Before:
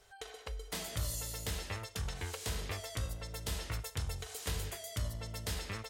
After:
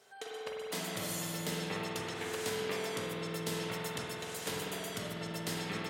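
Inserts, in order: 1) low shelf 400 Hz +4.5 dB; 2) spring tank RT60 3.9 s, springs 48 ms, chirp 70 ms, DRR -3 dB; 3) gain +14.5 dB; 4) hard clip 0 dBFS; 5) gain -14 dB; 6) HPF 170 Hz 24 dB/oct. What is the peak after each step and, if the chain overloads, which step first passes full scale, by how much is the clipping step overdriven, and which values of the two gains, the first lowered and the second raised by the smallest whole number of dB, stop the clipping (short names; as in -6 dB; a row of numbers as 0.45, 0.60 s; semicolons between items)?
-23.0, -20.0, -5.5, -5.5, -19.5, -23.5 dBFS; no overload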